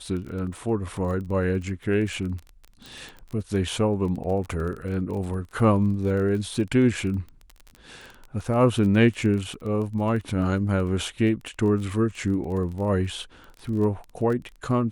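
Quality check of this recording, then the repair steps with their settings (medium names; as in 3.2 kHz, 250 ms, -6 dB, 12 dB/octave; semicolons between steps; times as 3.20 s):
crackle 22 per s -32 dBFS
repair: de-click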